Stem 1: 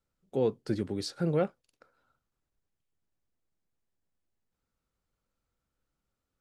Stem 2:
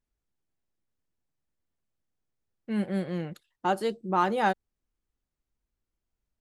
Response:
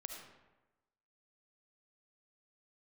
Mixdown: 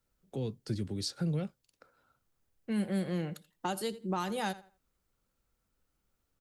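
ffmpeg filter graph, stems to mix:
-filter_complex "[0:a]acrossover=split=200|3000[a][b][c];[b]acompressor=threshold=-52dB:ratio=2[d];[a][d][c]amix=inputs=3:normalize=0,volume=2.5dB[e];[1:a]highshelf=f=7.9k:g=10,volume=0dB,asplit=2[f][g];[g]volume=-19.5dB,aecho=0:1:83|166|249:1|0.17|0.0289[h];[e][f][h]amix=inputs=3:normalize=0,acrossover=split=180|3000[i][j][k];[j]acompressor=threshold=-33dB:ratio=6[l];[i][l][k]amix=inputs=3:normalize=0"

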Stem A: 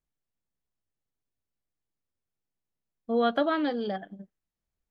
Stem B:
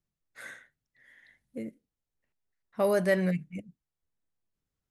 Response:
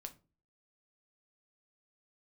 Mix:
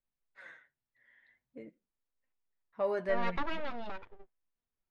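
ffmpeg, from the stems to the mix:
-filter_complex "[0:a]aeval=exprs='abs(val(0))':c=same,volume=-5.5dB[a];[1:a]equalizer=f=970:w=7.9:g=6,acontrast=86,flanger=delay=3.8:depth=5.1:regen=38:speed=0.45:shape=sinusoidal,volume=-10dB[b];[a][b]amix=inputs=2:normalize=0,lowpass=3k,equalizer=f=120:w=0.52:g=-6"

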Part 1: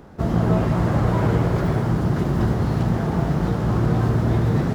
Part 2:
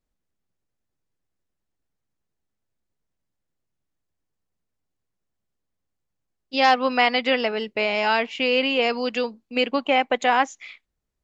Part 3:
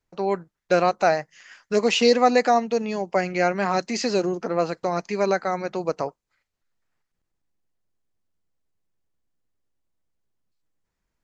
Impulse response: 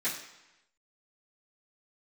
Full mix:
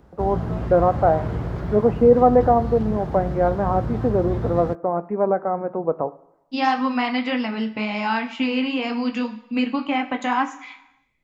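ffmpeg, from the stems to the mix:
-filter_complex "[0:a]acrossover=split=5600[a][b];[b]acompressor=threshold=-58dB:ratio=4:attack=1:release=60[c];[a][c]amix=inputs=2:normalize=0,equalizer=f=61:w=2.1:g=10,volume=-9dB[d];[1:a]acompressor=threshold=-32dB:ratio=1.5,equalizer=f=125:t=o:w=1:g=11,equalizer=f=250:t=o:w=1:g=10,equalizer=f=500:t=o:w=1:g=-7,equalizer=f=1k:t=o:w=1:g=9,flanger=delay=8.2:depth=5.3:regen=-44:speed=1.9:shape=triangular,volume=1dB,asplit=2[e][f];[f]volume=-11dB[g];[2:a]lowpass=f=1.1k:w=0.5412,lowpass=f=1.1k:w=1.3066,volume=2.5dB,asplit=2[h][i];[i]volume=-17.5dB[j];[3:a]atrim=start_sample=2205[k];[g][j]amix=inputs=2:normalize=0[l];[l][k]afir=irnorm=-1:irlink=0[m];[d][e][h][m]amix=inputs=4:normalize=0"

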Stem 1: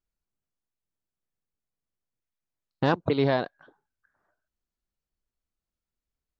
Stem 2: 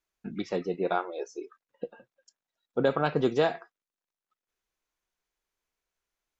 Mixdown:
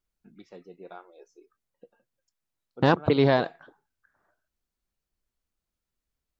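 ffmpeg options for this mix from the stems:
-filter_complex "[0:a]volume=3dB[a];[1:a]volume=-16.5dB[b];[a][b]amix=inputs=2:normalize=0"

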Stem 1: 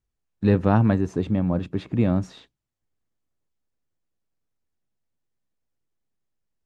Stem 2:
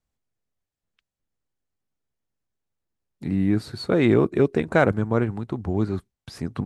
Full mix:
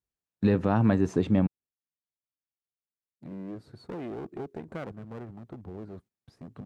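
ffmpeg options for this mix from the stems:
-filter_complex "[0:a]alimiter=limit=-12.5dB:level=0:latency=1:release=173,volume=1.5dB,asplit=3[a][b][c];[a]atrim=end=1.47,asetpts=PTS-STARTPTS,afade=t=out:st=1.466:d=0.004:c=hsin[d];[b]atrim=start=1.47:end=3.82,asetpts=PTS-STARTPTS,volume=0[e];[c]atrim=start=3.82,asetpts=PTS-STARTPTS,afade=t=in:d=0.004:c=hsin[f];[d][e][f]concat=n=3:v=0:a=1[g];[1:a]tiltshelf=f=1.1k:g=7,acompressor=threshold=-16dB:ratio=2,aeval=exprs='clip(val(0),-1,0.0794)':c=same,volume=-15.5dB[h];[g][h]amix=inputs=2:normalize=0,agate=range=-9dB:threshold=-53dB:ratio=16:detection=peak,highpass=f=120:p=1"

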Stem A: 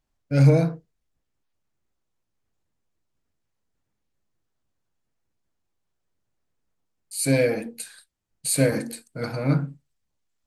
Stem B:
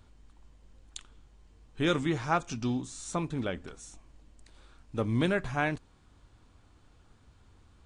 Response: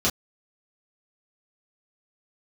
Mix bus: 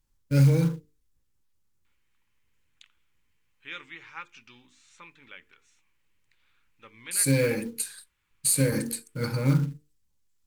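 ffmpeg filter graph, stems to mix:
-filter_complex "[0:a]aemphasis=mode=production:type=cd,acompressor=threshold=-18dB:ratio=6,acrusher=bits=5:mode=log:mix=0:aa=0.000001,volume=-2dB[a];[1:a]bandpass=f=2.3k:t=q:w=2.6:csg=0,adelay=1850,volume=-1dB[b];[a][b]amix=inputs=2:normalize=0,asuperstop=centerf=680:order=4:qfactor=3.3,lowshelf=f=160:g=9.5,bandreject=f=50:t=h:w=6,bandreject=f=100:t=h:w=6,bandreject=f=150:t=h:w=6,bandreject=f=200:t=h:w=6,bandreject=f=250:t=h:w=6,bandreject=f=300:t=h:w=6,bandreject=f=350:t=h:w=6,bandreject=f=400:t=h:w=6,bandreject=f=450:t=h:w=6"

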